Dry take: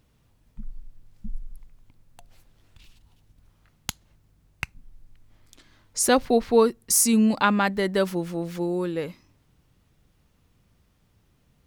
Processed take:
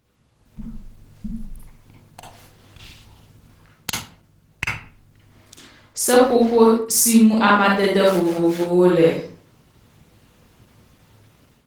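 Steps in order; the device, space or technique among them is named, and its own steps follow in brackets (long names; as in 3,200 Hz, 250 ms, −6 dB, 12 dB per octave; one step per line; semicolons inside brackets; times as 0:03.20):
far-field microphone of a smart speaker (convolution reverb RT60 0.45 s, pre-delay 40 ms, DRR −3.5 dB; high-pass filter 95 Hz 6 dB per octave; automatic gain control gain up to 12 dB; level −1 dB; Opus 16 kbit/s 48,000 Hz)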